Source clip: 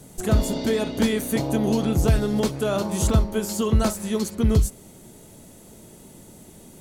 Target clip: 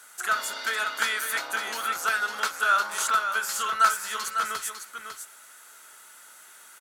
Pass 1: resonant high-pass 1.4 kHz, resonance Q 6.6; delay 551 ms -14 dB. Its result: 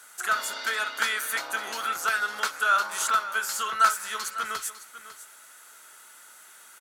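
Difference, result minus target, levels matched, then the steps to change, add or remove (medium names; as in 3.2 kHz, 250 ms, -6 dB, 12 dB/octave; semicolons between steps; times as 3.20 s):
echo-to-direct -6.5 dB
change: delay 551 ms -7.5 dB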